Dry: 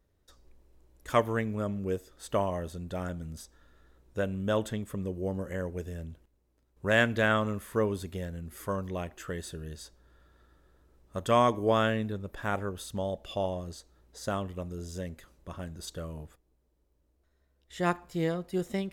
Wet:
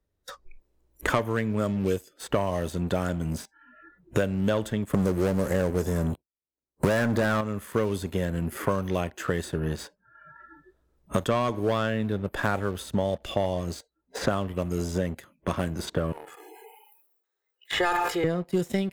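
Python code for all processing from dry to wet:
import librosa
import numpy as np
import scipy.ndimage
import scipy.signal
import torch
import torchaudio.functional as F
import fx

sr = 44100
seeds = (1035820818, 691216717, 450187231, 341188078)

y = fx.chain(x, sr, fx.leveller(passes=3),
    fx.peak_eq(hz=2700.0, db=-12.5, octaves=0.81), at=(4.93, 7.41))
y = fx.chain(y, sr, fx.highpass(hz=660.0, slope=12),
    fx.comb(ms=2.4, depth=0.73),
    fx.sustainer(db_per_s=28.0), at=(16.12, 18.24))
y = fx.noise_reduce_blind(y, sr, reduce_db=29)
y = fx.leveller(y, sr, passes=2)
y = fx.band_squash(y, sr, depth_pct=100)
y = F.gain(torch.from_numpy(y), -3.5).numpy()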